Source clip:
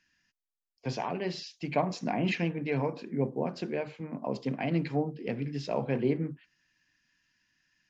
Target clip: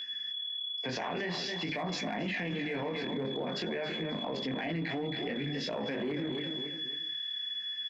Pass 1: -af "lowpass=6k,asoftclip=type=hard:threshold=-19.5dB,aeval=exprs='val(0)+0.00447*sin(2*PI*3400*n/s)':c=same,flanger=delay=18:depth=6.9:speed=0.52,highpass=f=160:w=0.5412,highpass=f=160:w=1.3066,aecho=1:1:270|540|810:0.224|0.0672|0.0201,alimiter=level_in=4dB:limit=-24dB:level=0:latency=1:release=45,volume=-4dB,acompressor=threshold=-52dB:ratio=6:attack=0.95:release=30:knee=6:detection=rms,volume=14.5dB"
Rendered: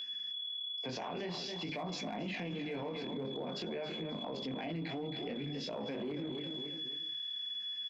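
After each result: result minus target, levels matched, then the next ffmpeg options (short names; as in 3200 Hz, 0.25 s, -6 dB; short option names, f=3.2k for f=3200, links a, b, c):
compressor: peak gain reduction +5 dB; 2000 Hz band -5.0 dB
-af "lowpass=6k,asoftclip=type=hard:threshold=-19.5dB,aeval=exprs='val(0)+0.00447*sin(2*PI*3400*n/s)':c=same,flanger=delay=18:depth=6.9:speed=0.52,highpass=f=160:w=0.5412,highpass=f=160:w=1.3066,aecho=1:1:270|540|810:0.224|0.0672|0.0201,alimiter=level_in=4dB:limit=-24dB:level=0:latency=1:release=45,volume=-4dB,acompressor=threshold=-46dB:ratio=6:attack=0.95:release=30:knee=6:detection=rms,volume=14.5dB"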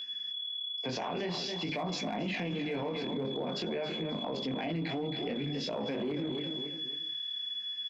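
2000 Hz band -4.5 dB
-af "lowpass=6k,asoftclip=type=hard:threshold=-19.5dB,aeval=exprs='val(0)+0.00447*sin(2*PI*3400*n/s)':c=same,flanger=delay=18:depth=6.9:speed=0.52,highpass=f=160:w=0.5412,highpass=f=160:w=1.3066,equalizer=f=1.8k:w=3.2:g=11.5,aecho=1:1:270|540|810:0.224|0.0672|0.0201,alimiter=level_in=4dB:limit=-24dB:level=0:latency=1:release=45,volume=-4dB,acompressor=threshold=-46dB:ratio=6:attack=0.95:release=30:knee=6:detection=rms,volume=14.5dB"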